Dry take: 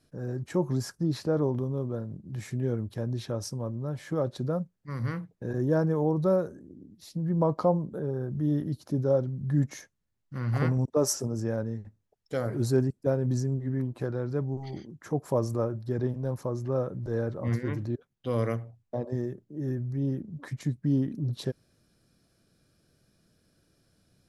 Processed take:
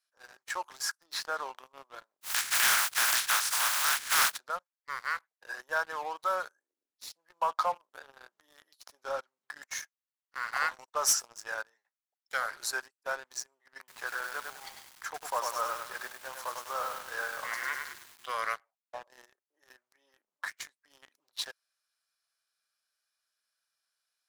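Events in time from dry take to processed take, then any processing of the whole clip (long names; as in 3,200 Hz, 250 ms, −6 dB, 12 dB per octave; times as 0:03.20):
0:02.21–0:04.36: compressing power law on the bin magnitudes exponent 0.24
0:13.78–0:18.33: feedback echo at a low word length 100 ms, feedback 55%, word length 8 bits, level −4 dB
whole clip: high-pass filter 940 Hz 24 dB per octave; dynamic equaliser 1,500 Hz, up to +6 dB, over −57 dBFS, Q 2.9; leveller curve on the samples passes 3; level −4 dB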